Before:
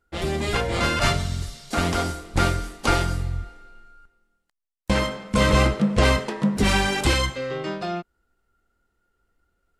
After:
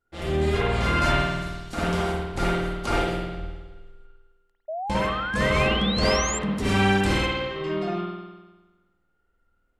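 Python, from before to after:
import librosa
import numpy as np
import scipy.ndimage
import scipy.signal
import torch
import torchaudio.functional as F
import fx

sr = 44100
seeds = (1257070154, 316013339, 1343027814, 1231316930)

y = fx.rev_spring(x, sr, rt60_s=1.2, pass_ms=(51,), chirp_ms=75, drr_db=-6.5)
y = fx.spec_paint(y, sr, seeds[0], shape='rise', start_s=4.68, length_s=1.71, low_hz=610.0, high_hz=7600.0, level_db=-22.0)
y = y * librosa.db_to_amplitude(-8.5)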